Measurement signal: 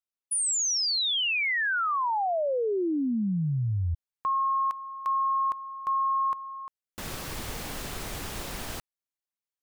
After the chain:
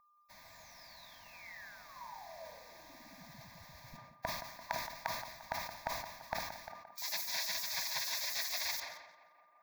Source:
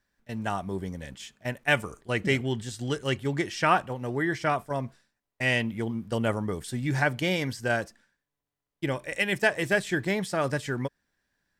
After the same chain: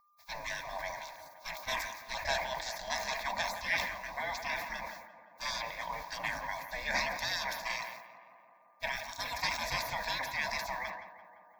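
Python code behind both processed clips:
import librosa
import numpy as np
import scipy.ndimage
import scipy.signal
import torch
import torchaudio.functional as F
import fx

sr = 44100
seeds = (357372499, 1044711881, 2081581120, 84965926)

p1 = fx.rider(x, sr, range_db=4, speed_s=2.0)
p2 = x + (p1 * librosa.db_to_amplitude(0.0))
p3 = fx.dmg_noise_colour(p2, sr, seeds[0], colour='white', level_db=-56.0)
p4 = fx.high_shelf(p3, sr, hz=5800.0, db=-11.0)
p5 = fx.spec_gate(p4, sr, threshold_db=-25, keep='weak')
p6 = fx.peak_eq(p5, sr, hz=1600.0, db=3.5, octaves=0.65)
p7 = fx.small_body(p6, sr, hz=(650.0, 960.0), ring_ms=45, db=9)
p8 = p7 + 10.0 ** (-65.0 / 20.0) * np.sin(2.0 * np.pi * 1200.0 * np.arange(len(p7)) / sr)
p9 = fx.fixed_phaser(p8, sr, hz=2000.0, stages=8)
p10 = fx.echo_tape(p9, sr, ms=172, feedback_pct=78, wet_db=-10.5, lp_hz=2000.0, drive_db=29.0, wow_cents=22)
p11 = fx.sustainer(p10, sr, db_per_s=58.0)
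y = p11 * librosa.db_to_amplitude(6.0)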